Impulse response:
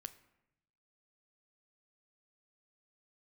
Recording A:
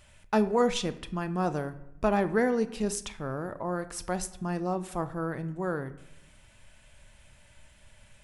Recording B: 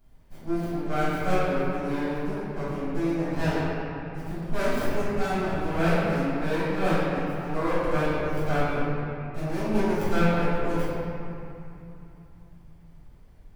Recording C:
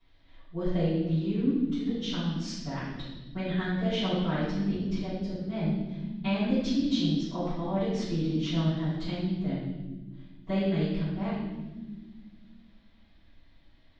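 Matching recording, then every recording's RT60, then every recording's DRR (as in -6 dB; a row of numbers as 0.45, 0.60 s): A; 0.85 s, 2.9 s, not exponential; 11.0, -13.5, -17.0 dB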